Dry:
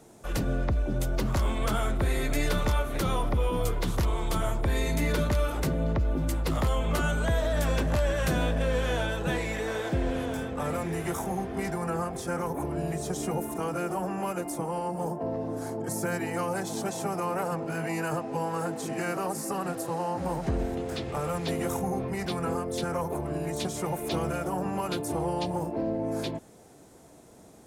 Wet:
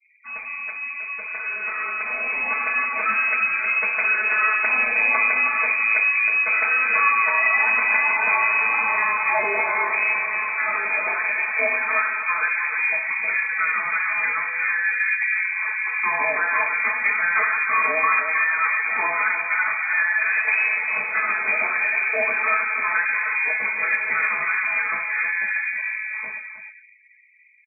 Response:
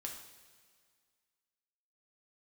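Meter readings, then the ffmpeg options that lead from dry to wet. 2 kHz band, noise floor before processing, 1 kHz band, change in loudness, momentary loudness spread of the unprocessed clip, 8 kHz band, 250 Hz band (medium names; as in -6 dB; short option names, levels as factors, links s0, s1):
+21.0 dB, -52 dBFS, +8.0 dB, +10.5 dB, 5 LU, under -40 dB, under -15 dB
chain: -filter_complex "[0:a]asplit=2[s0][s1];[s1]adelay=314.9,volume=0.447,highshelf=f=4000:g=-7.08[s2];[s0][s2]amix=inputs=2:normalize=0,adynamicequalizer=threshold=0.00398:dfrequency=1400:dqfactor=1.8:tfrequency=1400:tqfactor=1.8:attack=5:release=100:ratio=0.375:range=2:mode=boostabove:tftype=bell[s3];[1:a]atrim=start_sample=2205,asetrate=48510,aresample=44100[s4];[s3][s4]afir=irnorm=-1:irlink=0,afftfilt=real='re*gte(hypot(re,im),0.00398)':imag='im*gte(hypot(re,im),0.00398)':win_size=1024:overlap=0.75,asplit=2[s5][s6];[s6]alimiter=level_in=1.19:limit=0.0631:level=0:latency=1:release=446,volume=0.841,volume=0.75[s7];[s5][s7]amix=inputs=2:normalize=0,lowpass=f=2200:t=q:w=0.5098,lowpass=f=2200:t=q:w=0.6013,lowpass=f=2200:t=q:w=0.9,lowpass=f=2200:t=q:w=2.563,afreqshift=-2600,aemphasis=mode=reproduction:type=75fm,aecho=1:1:4.6:0.89,acrossover=split=180[s8][s9];[s9]dynaudnorm=f=320:g=17:m=5.01[s10];[s8][s10]amix=inputs=2:normalize=0,volume=0.562"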